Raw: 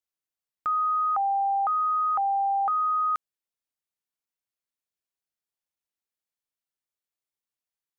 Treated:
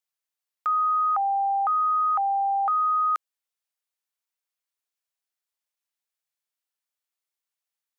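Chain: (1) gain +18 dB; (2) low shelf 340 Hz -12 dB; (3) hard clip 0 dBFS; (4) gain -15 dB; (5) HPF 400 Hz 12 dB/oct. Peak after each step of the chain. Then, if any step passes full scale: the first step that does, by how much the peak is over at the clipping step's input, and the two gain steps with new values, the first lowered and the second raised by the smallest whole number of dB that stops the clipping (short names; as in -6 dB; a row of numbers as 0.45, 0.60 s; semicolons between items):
-3.5, -4.0, -4.0, -19.0, -18.5 dBFS; no overload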